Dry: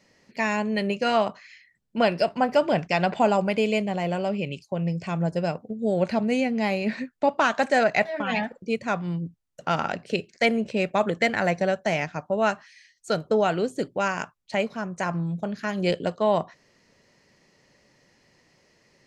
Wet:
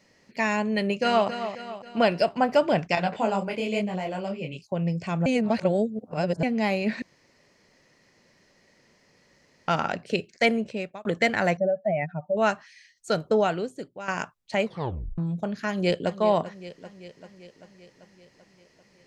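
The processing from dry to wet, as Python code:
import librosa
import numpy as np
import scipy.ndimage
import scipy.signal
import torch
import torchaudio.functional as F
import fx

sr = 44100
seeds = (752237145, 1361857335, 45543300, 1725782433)

y = fx.echo_throw(x, sr, start_s=0.77, length_s=0.51, ms=270, feedback_pct=50, wet_db=-10.0)
y = fx.detune_double(y, sr, cents=39, at=(2.95, 4.67))
y = fx.spec_expand(y, sr, power=2.4, at=(11.57, 12.37))
y = fx.echo_throw(y, sr, start_s=15.68, length_s=0.49, ms=390, feedback_pct=65, wet_db=-13.0)
y = fx.edit(y, sr, fx.reverse_span(start_s=5.26, length_s=1.17),
    fx.room_tone_fill(start_s=7.02, length_s=2.66),
    fx.fade_out_span(start_s=10.49, length_s=0.56),
    fx.fade_out_to(start_s=13.4, length_s=0.68, curve='qua', floor_db=-13.0),
    fx.tape_stop(start_s=14.65, length_s=0.53), tone=tone)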